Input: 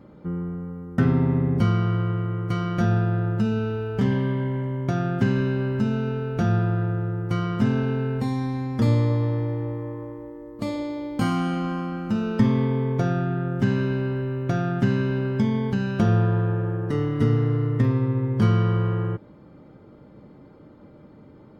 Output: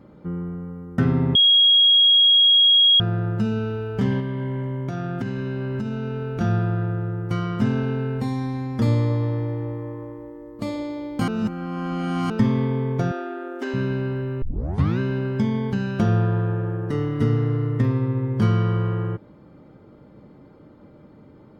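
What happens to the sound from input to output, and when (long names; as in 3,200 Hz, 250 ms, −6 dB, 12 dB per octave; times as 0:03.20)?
0:01.35–0:03.00: beep over 3,290 Hz −11.5 dBFS
0:04.20–0:06.41: downward compressor, threshold −23 dBFS
0:11.28–0:12.30: reverse
0:13.11–0:13.74: linear-phase brick-wall high-pass 250 Hz
0:14.42: tape start 0.57 s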